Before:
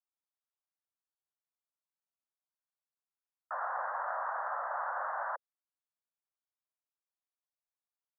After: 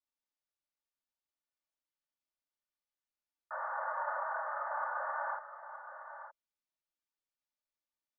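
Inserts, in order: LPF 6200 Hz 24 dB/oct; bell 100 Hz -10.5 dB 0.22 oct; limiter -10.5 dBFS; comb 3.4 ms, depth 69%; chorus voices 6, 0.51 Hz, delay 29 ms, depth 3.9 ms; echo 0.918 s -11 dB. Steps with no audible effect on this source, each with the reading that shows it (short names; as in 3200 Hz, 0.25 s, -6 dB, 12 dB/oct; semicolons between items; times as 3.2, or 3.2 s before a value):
LPF 6200 Hz: input band ends at 2000 Hz; bell 100 Hz: input band starts at 450 Hz; limiter -10.5 dBFS: input peak -24.5 dBFS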